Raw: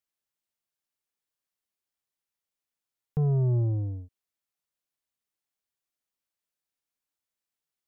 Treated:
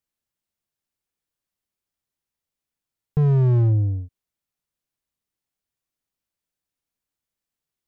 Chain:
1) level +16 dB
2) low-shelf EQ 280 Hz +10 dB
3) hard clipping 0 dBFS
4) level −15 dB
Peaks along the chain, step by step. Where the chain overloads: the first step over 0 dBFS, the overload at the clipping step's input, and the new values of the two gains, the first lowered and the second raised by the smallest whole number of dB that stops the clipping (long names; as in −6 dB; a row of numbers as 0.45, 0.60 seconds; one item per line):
−6.0, +3.5, 0.0, −15.0 dBFS
step 2, 3.5 dB
step 1 +12 dB, step 4 −11 dB